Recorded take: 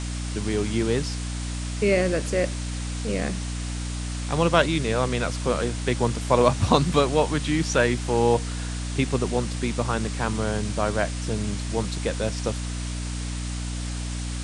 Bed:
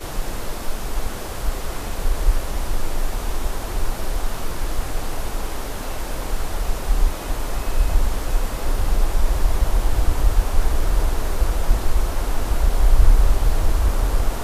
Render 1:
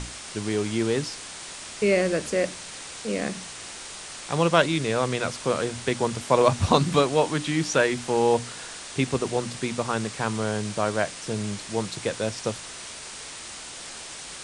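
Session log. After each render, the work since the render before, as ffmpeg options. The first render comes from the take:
-af "bandreject=f=60:t=h:w=6,bandreject=f=120:t=h:w=6,bandreject=f=180:t=h:w=6,bandreject=f=240:t=h:w=6,bandreject=f=300:t=h:w=6"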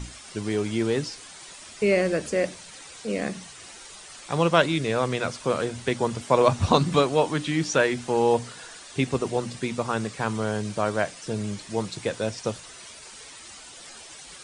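-af "afftdn=nr=10:nf=-40"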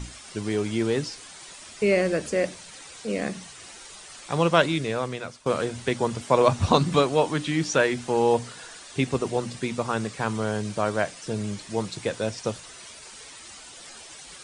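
-filter_complex "[0:a]asplit=2[s0][s1];[s0]atrim=end=5.46,asetpts=PTS-STARTPTS,afade=t=out:st=4.68:d=0.78:silence=0.188365[s2];[s1]atrim=start=5.46,asetpts=PTS-STARTPTS,afade=t=in:d=0.004:c=hsin:silence=0.188365[s3];[s2][s3]concat=n=2:v=0:a=1"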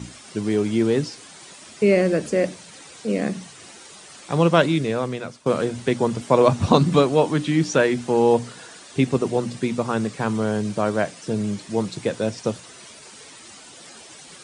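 -af "highpass=150,lowshelf=f=390:g=10"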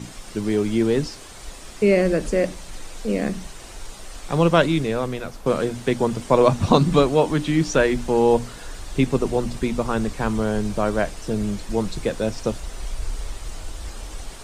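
-filter_complex "[1:a]volume=0.168[s0];[0:a][s0]amix=inputs=2:normalize=0"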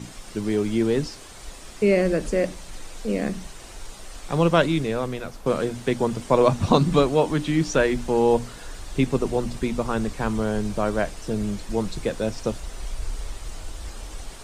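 -af "volume=0.794"

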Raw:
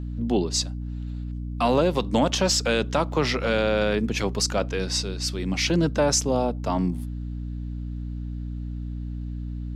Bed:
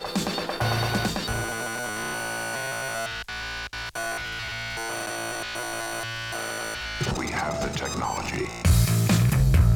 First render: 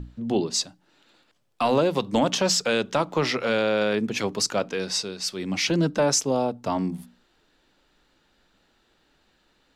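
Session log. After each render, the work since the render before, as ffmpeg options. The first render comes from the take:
-af "bandreject=f=60:t=h:w=6,bandreject=f=120:t=h:w=6,bandreject=f=180:t=h:w=6,bandreject=f=240:t=h:w=6,bandreject=f=300:t=h:w=6"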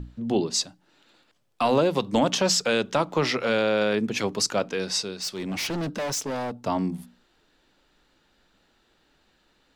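-filter_complex "[0:a]asettb=1/sr,asplit=3[s0][s1][s2];[s0]atrim=end=5.204[s3];[s1]atrim=start=5.2:end=6.56,asetpts=PTS-STARTPTS,afade=t=in:d=0.004:c=qsin,afade=t=out:st=1.356:d=0.004:c=qsin,asoftclip=type=hard:threshold=0.0473[s4];[s2]atrim=start=6.556[s5];[s3][s4]acrossfade=d=0.004:c1=hsin:c2=qsin[s6];[s6][s5]acrossfade=d=0.004:c1=qsin:c2=hsin"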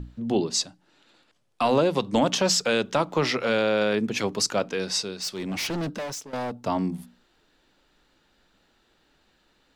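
-filter_complex "[0:a]asettb=1/sr,asplit=3[s0][s1][s2];[s0]atrim=end=0.544[s3];[s1]atrim=start=0.54:end=2.17,asetpts=PTS-STARTPTS,afade=t=in:d=0.004:c=qsin,afade=t=out:st=1.626:d=0.004:c=qsin,lowpass=f=12000:w=0.5412,lowpass=f=12000:w=1.3066[s4];[s2]atrim=start=2.166[s5];[s3][s4]acrossfade=d=0.004:c1=hsin:c2=qsin[s6];[s6][s5]acrossfade=d=0.004:c1=qsin:c2=hsin,asplit=2[s7][s8];[s7]atrim=end=6.33,asetpts=PTS-STARTPTS,afade=t=out:st=5.86:d=0.47:silence=0.158489[s9];[s8]atrim=start=6.33,asetpts=PTS-STARTPTS,afade=t=in:d=0.004:c=hsin:silence=0.158489[s10];[s9][s10]concat=n=2:v=0:a=1"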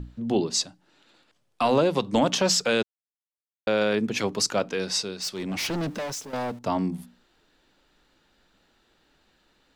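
-filter_complex "[0:a]asettb=1/sr,asplit=3[s0][s1][s2];[s0]atrim=end=5.644[s3];[s1]atrim=start=5.64:end=6.59,asetpts=PTS-STARTPTS,afade=t=in:d=0.004:c=qsin,afade=t=out:st=0.946:d=0.004:c=qsin,aeval=exprs='val(0)+0.5*0.00562*sgn(val(0))':c=same[s4];[s2]atrim=start=6.586[s5];[s3][s4]acrossfade=d=0.004:c1=hsin:c2=qsin[s6];[s6][s5]acrossfade=d=0.004:c1=qsin:c2=hsin,asplit=3[s7][s8][s9];[s7]atrim=end=2.83,asetpts=PTS-STARTPTS,afade=t=out:st=2.826:d=0.004:c=hsin[s10];[s8]atrim=start=2.83:end=3.67,asetpts=PTS-STARTPTS,volume=0[s11];[s9]atrim=start=3.67,asetpts=PTS-STARTPTS,afade=t=in:d=0.004:c=hsin[s12];[s10][s11][s12]concat=n=3:v=0:a=1"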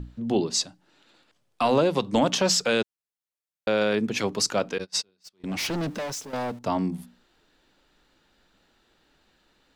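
-filter_complex "[0:a]asettb=1/sr,asplit=3[s0][s1][s2];[s0]atrim=end=4.784[s3];[s1]atrim=start=4.78:end=5.44,asetpts=PTS-STARTPTS,afade=t=in:d=0.004:c=qsin,afade=t=out:st=0.656:d=0.004:c=qsin,agate=range=0.0224:threshold=0.0398:ratio=16:release=100:detection=peak[s4];[s2]atrim=start=5.436[s5];[s3][s4]acrossfade=d=0.004:c1=hsin:c2=qsin[s6];[s6][s5]acrossfade=d=0.004:c1=qsin:c2=hsin"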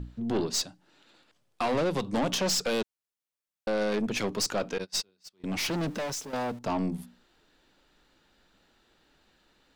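-af "aeval=exprs='(tanh(14.1*val(0)+0.3)-tanh(0.3))/14.1':c=same"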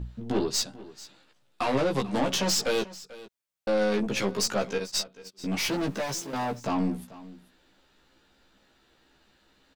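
-filter_complex "[0:a]asplit=2[s0][s1];[s1]adelay=15,volume=0.708[s2];[s0][s2]amix=inputs=2:normalize=0,aecho=1:1:440:0.119"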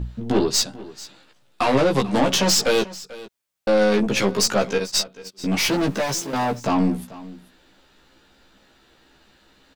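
-af "volume=2.37"

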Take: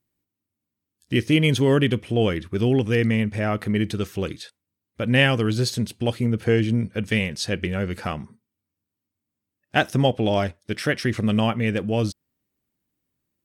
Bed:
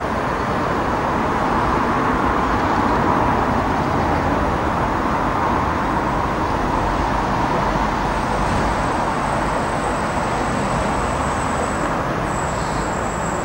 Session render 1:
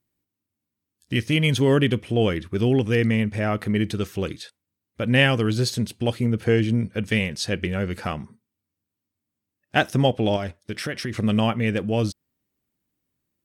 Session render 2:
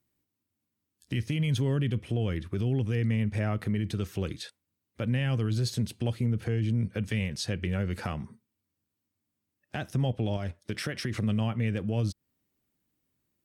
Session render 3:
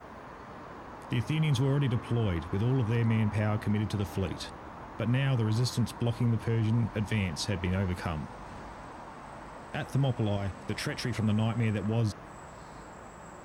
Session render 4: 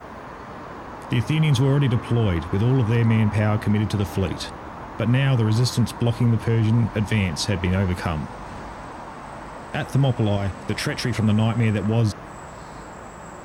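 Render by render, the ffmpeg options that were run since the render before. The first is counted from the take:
-filter_complex "[0:a]asettb=1/sr,asplit=3[s0][s1][s2];[s0]atrim=end=1.134[s3];[s1]atrim=start=1.13:end=1.57,asetpts=PTS-STARTPTS,afade=t=in:d=0.004:c=qsin,afade=t=out:st=0.436:d=0.004:c=qsin,equalizer=f=360:w=1.7:g=-7[s4];[s2]atrim=start=1.566[s5];[s3][s4]acrossfade=d=0.004:c1=hsin:c2=qsin[s6];[s6][s5]acrossfade=d=0.004:c1=qsin:c2=hsin,asettb=1/sr,asplit=3[s7][s8][s9];[s7]atrim=end=10.364[s10];[s8]atrim=start=10.36:end=11.15,asetpts=PTS-STARTPTS,afade=t=in:d=0.004:c=qsin,afade=t=out:st=0.786:d=0.004:c=qsin,acompressor=threshold=0.0631:ratio=5:attack=3.2:release=140:knee=1:detection=peak[s11];[s9]atrim=start=11.146[s12];[s10][s11]acrossfade=d=0.004:c1=hsin:c2=qsin[s13];[s13][s12]acrossfade=d=0.004:c1=qsin:c2=hsin"
-filter_complex "[0:a]acrossover=split=160[s0][s1];[s1]acompressor=threshold=0.0224:ratio=3[s2];[s0][s2]amix=inputs=2:normalize=0,alimiter=limit=0.1:level=0:latency=1:release=23"
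-filter_complex "[1:a]volume=0.0562[s0];[0:a][s0]amix=inputs=2:normalize=0"
-af "volume=2.66"

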